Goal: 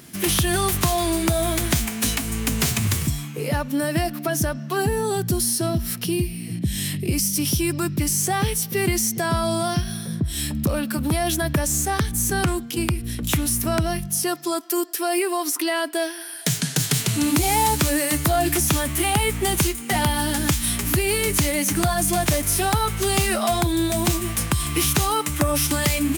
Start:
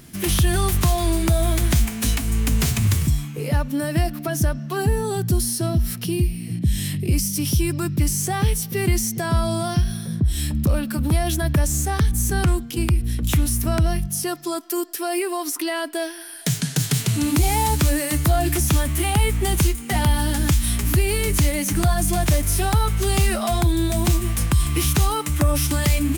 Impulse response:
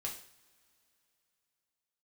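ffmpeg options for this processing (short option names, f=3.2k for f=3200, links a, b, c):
-af "highpass=f=210:p=1,volume=2.5dB"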